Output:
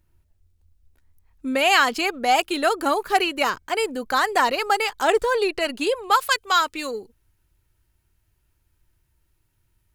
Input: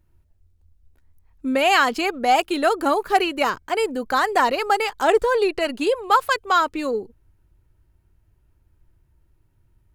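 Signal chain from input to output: tilt shelf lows -3 dB, about 1500 Hz, from 6.13 s lows -7.5 dB

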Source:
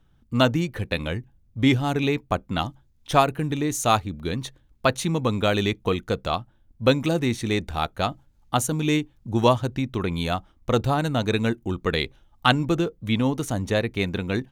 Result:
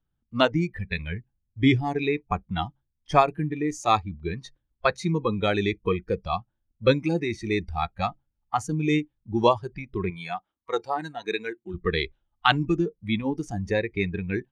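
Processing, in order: 10.1–11.74 HPF 480 Hz 6 dB/oct; spectral noise reduction 18 dB; LPF 4100 Hz 12 dB/oct

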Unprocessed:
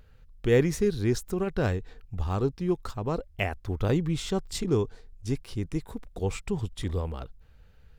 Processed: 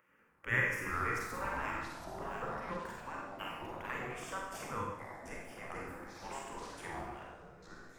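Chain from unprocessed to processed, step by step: three-band isolator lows -18 dB, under 260 Hz, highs -14 dB, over 2000 Hz; fixed phaser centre 1700 Hz, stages 4; spectral gate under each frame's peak -15 dB weak; Schroeder reverb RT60 0.84 s, combs from 32 ms, DRR -2 dB; echoes that change speed 0.192 s, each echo -6 st, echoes 3, each echo -6 dB; gain +5.5 dB

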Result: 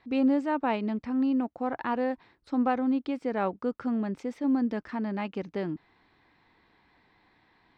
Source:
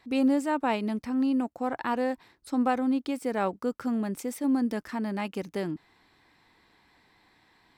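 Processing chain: air absorption 190 m

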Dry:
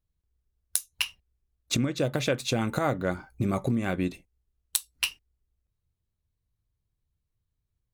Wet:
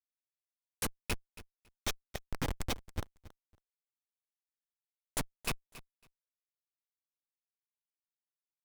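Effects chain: pre-emphasis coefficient 0.9; Schmitt trigger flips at -30.5 dBFS; feedback echo 0.254 s, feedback 16%, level -17 dB; speed mistake 48 kHz file played as 44.1 kHz; gain +9 dB

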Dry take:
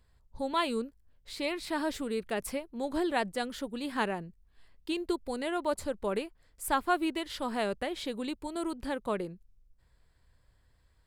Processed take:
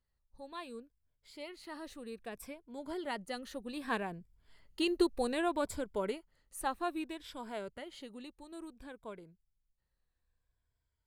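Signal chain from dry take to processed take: moving spectral ripple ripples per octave 1.7, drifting -0.61 Hz, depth 8 dB; Doppler pass-by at 4.97, 7 m/s, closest 4.4 m; gain +1 dB

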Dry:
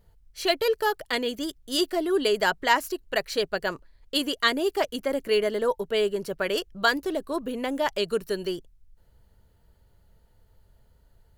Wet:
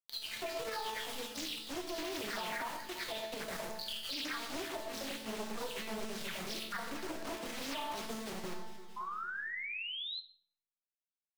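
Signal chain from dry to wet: spectral delay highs early, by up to 0.656 s; high shelf 3000 Hz -6 dB; crossover distortion -41 dBFS; graphic EQ 125/500/4000/8000 Hz +8/-6/+9/-6 dB; bit-crush 6-bit; on a send: echo with dull and thin repeats by turns 0.113 s, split 1600 Hz, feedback 69%, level -12 dB; on the sum: compressor 1.5:1, threshold -52 dBFS, peak gain reduction 11 dB; resonator 220 Hz, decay 0.88 s, mix 90%; painted sound rise, 8.96–10.2, 1000–4200 Hz -58 dBFS; shoebox room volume 98 m³, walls mixed, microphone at 0.4 m; limiter -46 dBFS, peak gain reduction 6.5 dB; Doppler distortion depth 0.66 ms; gain +16.5 dB

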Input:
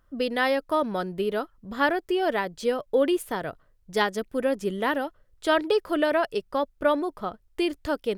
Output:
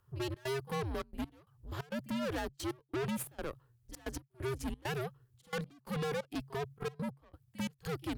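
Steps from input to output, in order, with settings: high shelf 9000 Hz +9.5 dB; on a send: reverse echo 46 ms -23 dB; on the sum: tube stage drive 31 dB, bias 0.75; step gate "xxx.xxxxx.x.." 133 bpm -24 dB; frequency shift -140 Hz; gain -2 dB

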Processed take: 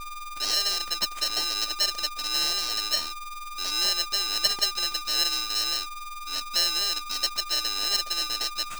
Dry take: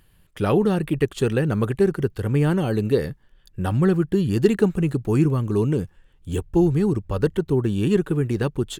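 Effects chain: four-band scrambler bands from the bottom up 2341; whine 610 Hz -26 dBFS; polarity switched at an audio rate 600 Hz; gain -7.5 dB

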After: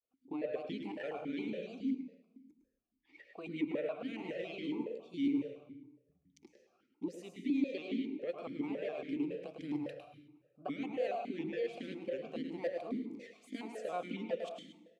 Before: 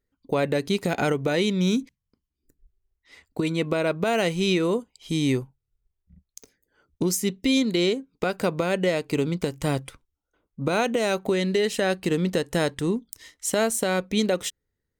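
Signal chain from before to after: reverse; compressor 4:1, threshold -34 dBFS, peak gain reduction 14 dB; reverse; grains, spray 19 ms, pitch spread up and down by 3 st; rotary speaker horn 5.5 Hz; outdoor echo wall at 18 m, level -6 dB; on a send at -7 dB: reverb RT60 1.1 s, pre-delay 0.11 s; on the sum: vowel sequencer 7.2 Hz; gain +8.5 dB

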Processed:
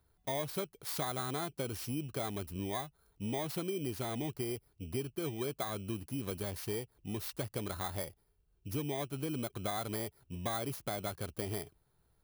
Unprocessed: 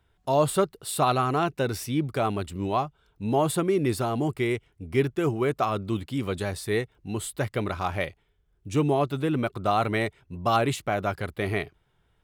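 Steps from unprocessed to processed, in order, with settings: FFT order left unsorted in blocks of 16 samples; compressor 4:1, threshold -30 dBFS, peak gain reduction 11.5 dB; gain -5 dB

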